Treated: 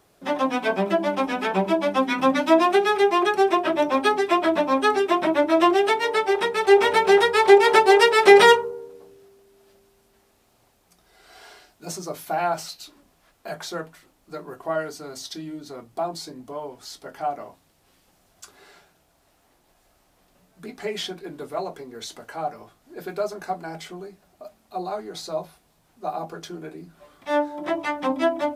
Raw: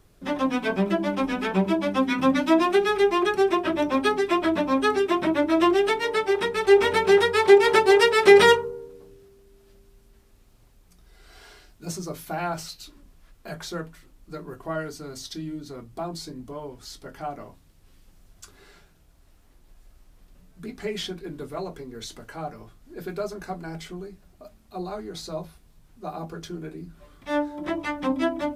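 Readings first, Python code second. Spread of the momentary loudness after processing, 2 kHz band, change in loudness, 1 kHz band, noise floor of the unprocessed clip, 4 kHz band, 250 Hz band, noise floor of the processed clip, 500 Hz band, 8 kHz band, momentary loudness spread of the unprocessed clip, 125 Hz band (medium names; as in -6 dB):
22 LU, +2.5 dB, +1.5 dB, +5.0 dB, -57 dBFS, +2.0 dB, -1.0 dB, -63 dBFS, +1.5 dB, +2.0 dB, 21 LU, -4.5 dB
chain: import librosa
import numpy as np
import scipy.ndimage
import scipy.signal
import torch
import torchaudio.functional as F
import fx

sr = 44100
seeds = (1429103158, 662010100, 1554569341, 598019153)

y = fx.highpass(x, sr, hz=320.0, slope=6)
y = fx.peak_eq(y, sr, hz=730.0, db=6.0, octaves=0.77)
y = y * librosa.db_to_amplitude(2.0)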